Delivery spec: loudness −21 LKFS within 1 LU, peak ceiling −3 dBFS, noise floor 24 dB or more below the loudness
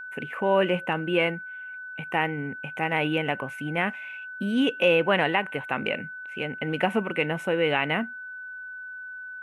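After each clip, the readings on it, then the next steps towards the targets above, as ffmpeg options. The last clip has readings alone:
interfering tone 1,500 Hz; level of the tone −36 dBFS; integrated loudness −26.0 LKFS; sample peak −9.0 dBFS; target loudness −21.0 LKFS
→ -af "bandreject=frequency=1500:width=30"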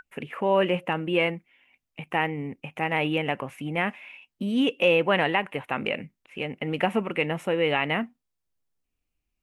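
interfering tone none found; integrated loudness −26.0 LKFS; sample peak −9.0 dBFS; target loudness −21.0 LKFS
→ -af "volume=5dB"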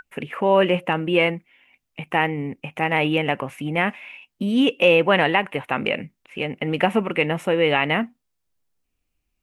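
integrated loudness −21.0 LKFS; sample peak −4.0 dBFS; background noise floor −78 dBFS

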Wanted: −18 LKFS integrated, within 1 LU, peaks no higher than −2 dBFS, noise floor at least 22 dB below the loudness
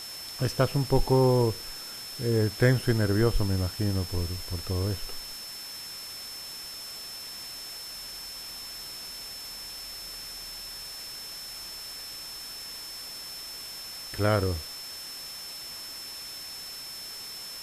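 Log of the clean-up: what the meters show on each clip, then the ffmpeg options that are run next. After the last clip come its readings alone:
interfering tone 5,300 Hz; level of the tone −39 dBFS; background noise floor −40 dBFS; target noise floor −53 dBFS; integrated loudness −31.0 LKFS; sample peak −10.0 dBFS; target loudness −18.0 LKFS
→ -af "bandreject=frequency=5300:width=30"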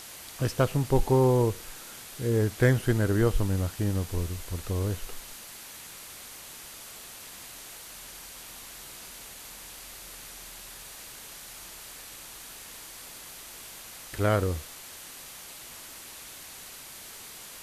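interfering tone none found; background noise floor −45 dBFS; target noise floor −54 dBFS
→ -af "afftdn=noise_reduction=9:noise_floor=-45"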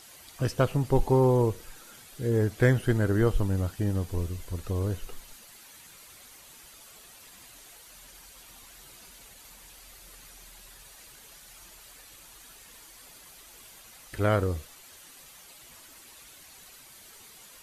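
background noise floor −52 dBFS; integrated loudness −27.0 LKFS; sample peak −10.0 dBFS; target loudness −18.0 LKFS
→ -af "volume=9dB,alimiter=limit=-2dB:level=0:latency=1"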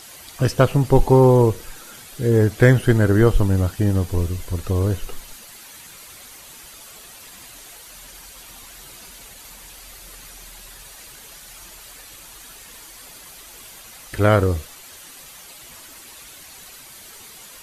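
integrated loudness −18.0 LKFS; sample peak −2.0 dBFS; background noise floor −43 dBFS

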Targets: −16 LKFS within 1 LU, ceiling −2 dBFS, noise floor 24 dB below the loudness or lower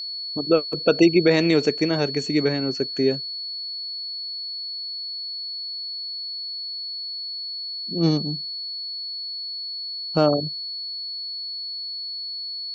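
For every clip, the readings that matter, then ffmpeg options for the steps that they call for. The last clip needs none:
interfering tone 4,400 Hz; level of the tone −29 dBFS; integrated loudness −24.5 LKFS; sample peak −4.0 dBFS; target loudness −16.0 LKFS
→ -af "bandreject=frequency=4400:width=30"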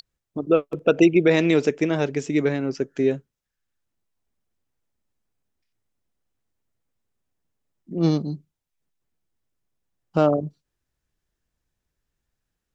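interfering tone none found; integrated loudness −21.5 LKFS; sample peak −4.5 dBFS; target loudness −16.0 LKFS
→ -af "volume=5.5dB,alimiter=limit=-2dB:level=0:latency=1"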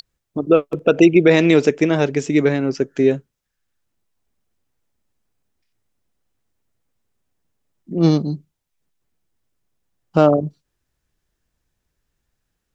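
integrated loudness −16.5 LKFS; sample peak −2.0 dBFS; background noise floor −78 dBFS

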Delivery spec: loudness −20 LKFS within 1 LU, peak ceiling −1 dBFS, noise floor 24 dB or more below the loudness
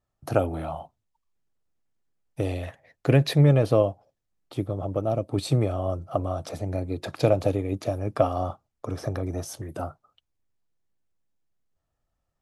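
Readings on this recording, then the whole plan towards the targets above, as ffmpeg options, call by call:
integrated loudness −26.5 LKFS; sample peak −6.5 dBFS; target loudness −20.0 LKFS
→ -af "volume=6.5dB,alimiter=limit=-1dB:level=0:latency=1"

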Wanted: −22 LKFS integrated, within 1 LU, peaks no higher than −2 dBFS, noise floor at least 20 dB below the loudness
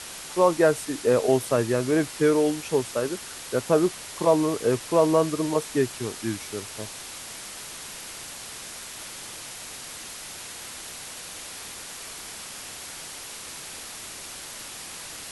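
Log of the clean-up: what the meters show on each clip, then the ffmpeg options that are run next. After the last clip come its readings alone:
background noise floor −40 dBFS; target noise floor −48 dBFS; integrated loudness −27.5 LKFS; sample peak −7.0 dBFS; target loudness −22.0 LKFS
→ -af "afftdn=noise_reduction=8:noise_floor=-40"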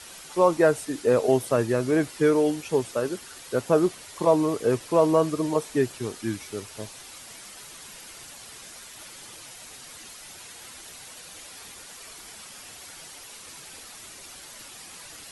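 background noise floor −45 dBFS; integrated loudness −24.5 LKFS; sample peak −7.0 dBFS; target loudness −22.0 LKFS
→ -af "volume=2.5dB"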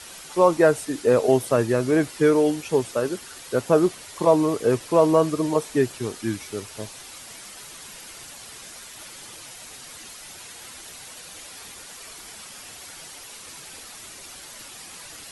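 integrated loudness −22.0 LKFS; sample peak −4.5 dBFS; background noise floor −42 dBFS

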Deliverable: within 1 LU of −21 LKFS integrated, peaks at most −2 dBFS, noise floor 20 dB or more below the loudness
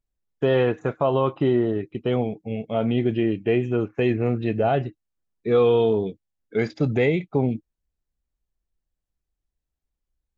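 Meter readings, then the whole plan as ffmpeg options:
integrated loudness −23.0 LKFS; sample peak −8.5 dBFS; target loudness −21.0 LKFS
→ -af "volume=2dB"

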